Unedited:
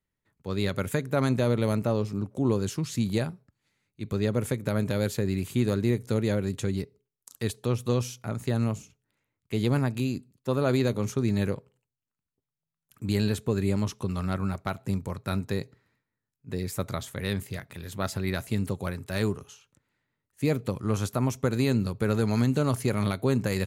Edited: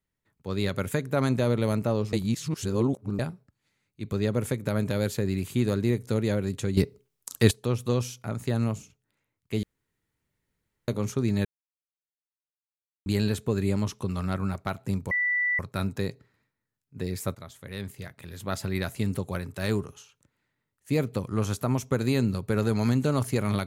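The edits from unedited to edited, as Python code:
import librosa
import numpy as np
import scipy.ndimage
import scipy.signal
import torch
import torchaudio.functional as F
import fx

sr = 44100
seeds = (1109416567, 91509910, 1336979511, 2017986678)

y = fx.edit(x, sr, fx.reverse_span(start_s=2.13, length_s=1.06),
    fx.clip_gain(start_s=6.77, length_s=0.74, db=10.0),
    fx.room_tone_fill(start_s=9.63, length_s=1.25),
    fx.silence(start_s=11.45, length_s=1.61),
    fx.insert_tone(at_s=15.11, length_s=0.48, hz=1970.0, db=-22.5),
    fx.fade_in_from(start_s=16.87, length_s=1.33, floor_db=-13.5), tone=tone)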